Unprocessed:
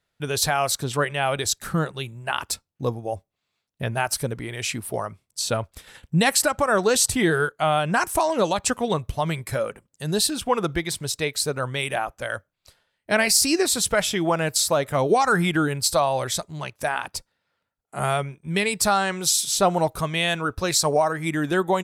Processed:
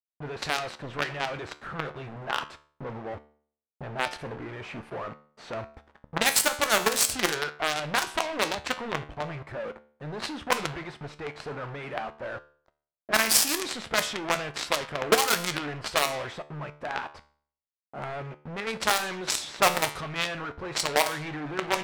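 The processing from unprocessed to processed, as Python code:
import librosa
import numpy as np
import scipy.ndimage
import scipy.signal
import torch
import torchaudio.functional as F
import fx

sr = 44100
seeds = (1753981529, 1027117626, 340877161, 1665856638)

y = fx.quant_companded(x, sr, bits=2)
y = fx.low_shelf(y, sr, hz=250.0, db=-8.5)
y = fx.comb_fb(y, sr, f0_hz=74.0, decay_s=0.55, harmonics='all', damping=0.0, mix_pct=60)
y = fx.env_lowpass(y, sr, base_hz=840.0, full_db=-18.5)
y = np.clip(y, -10.0 ** (-10.5 / 20.0), 10.0 ** (-10.5 / 20.0))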